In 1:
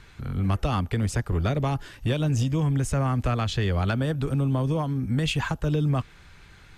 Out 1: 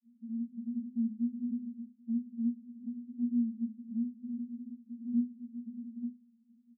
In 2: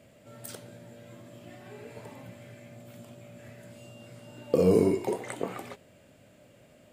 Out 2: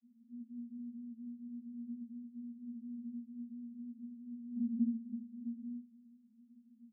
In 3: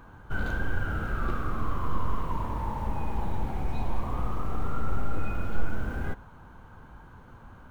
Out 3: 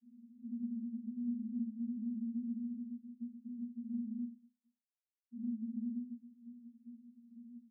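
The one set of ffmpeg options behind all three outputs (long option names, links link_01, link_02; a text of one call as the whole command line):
ffmpeg -i in.wav -filter_complex "[0:a]aeval=exprs='max(val(0),0)':channel_layout=same,asuperpass=centerf=230:order=12:qfactor=7.4,asplit=2[link_01][link_02];[link_02]adelay=25,volume=-2.5dB[link_03];[link_01][link_03]amix=inputs=2:normalize=0,asplit=2[link_04][link_05];[link_05]acompressor=threshold=-51dB:ratio=6,volume=3dB[link_06];[link_04][link_06]amix=inputs=2:normalize=0,volume=4.5dB" out.wav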